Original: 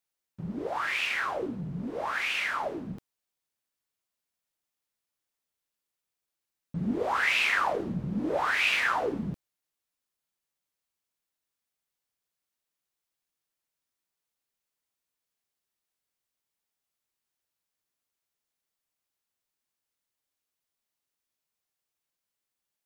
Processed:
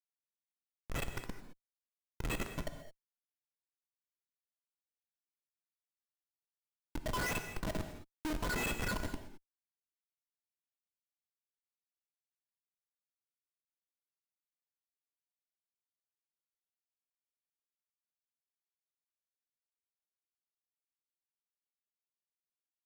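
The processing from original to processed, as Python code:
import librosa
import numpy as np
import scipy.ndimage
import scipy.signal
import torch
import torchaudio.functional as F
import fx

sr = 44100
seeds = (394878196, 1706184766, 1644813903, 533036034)

y = fx.hum_notches(x, sr, base_hz=50, count=6)
y = fx.stiff_resonator(y, sr, f0_hz=300.0, decay_s=0.42, stiffness=0.03)
y = fx.over_compress(y, sr, threshold_db=-45.0, ratio=-0.5, at=(7.37, 7.89))
y = fx.dereverb_blind(y, sr, rt60_s=0.94)
y = fx.schmitt(y, sr, flips_db=-40.5)
y = fx.rev_gated(y, sr, seeds[0], gate_ms=240, shape='flat', drr_db=7.0)
y = y * 10.0 ** (18.0 / 20.0)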